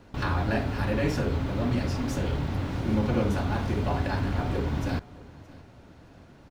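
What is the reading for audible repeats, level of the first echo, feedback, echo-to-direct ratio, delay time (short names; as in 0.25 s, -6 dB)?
2, -21.0 dB, 35%, -20.5 dB, 0.622 s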